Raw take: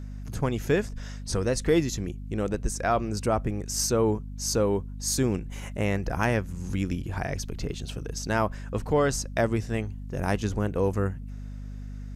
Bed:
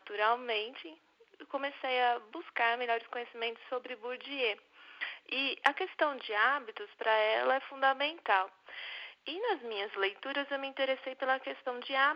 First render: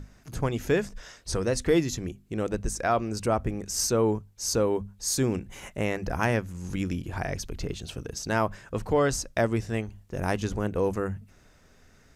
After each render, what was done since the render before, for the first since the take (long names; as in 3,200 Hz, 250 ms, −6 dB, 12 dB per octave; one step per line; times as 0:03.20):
mains-hum notches 50/100/150/200/250 Hz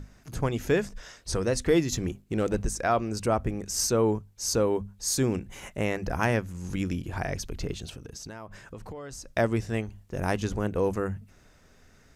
0:01.92–0:02.66: leveller curve on the samples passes 1
0:07.89–0:09.34: downward compressor 8 to 1, threshold −37 dBFS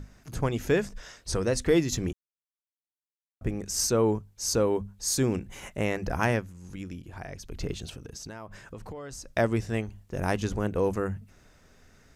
0:02.13–0:03.41: silence
0:06.31–0:07.64: duck −9 dB, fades 0.23 s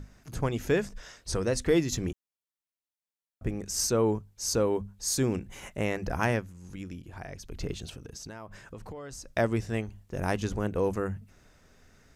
level −1.5 dB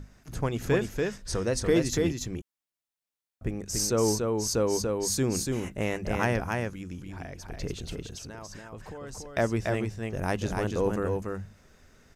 single-tap delay 287 ms −3.5 dB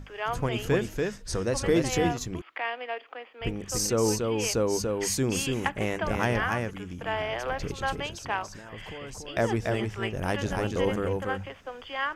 mix in bed −2 dB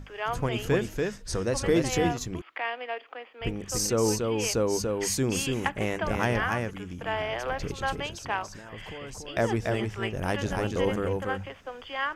no processing that can be heard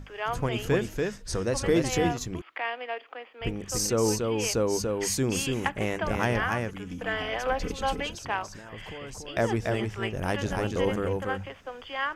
0:06.86–0:08.15: comb filter 4 ms, depth 79%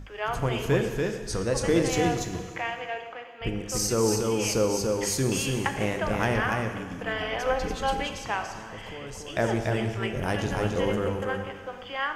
dense smooth reverb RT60 1.8 s, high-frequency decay 0.95×, DRR 5.5 dB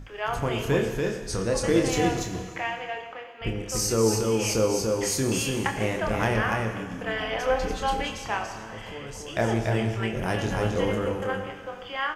double-tracking delay 27 ms −6.5 dB